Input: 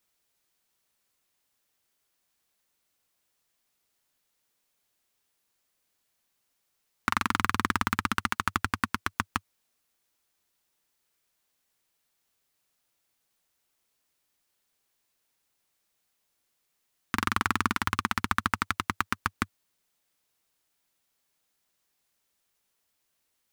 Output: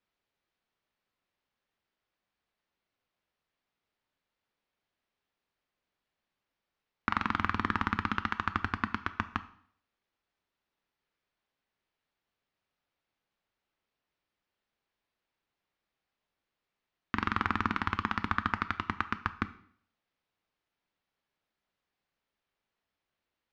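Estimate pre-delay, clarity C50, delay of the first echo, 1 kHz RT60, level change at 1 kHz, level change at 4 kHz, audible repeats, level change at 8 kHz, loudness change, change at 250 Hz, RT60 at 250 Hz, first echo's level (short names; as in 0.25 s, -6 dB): 4 ms, 16.0 dB, none, 0.60 s, -3.0 dB, -7.5 dB, none, under -20 dB, -3.5 dB, -1.5 dB, 0.60 s, none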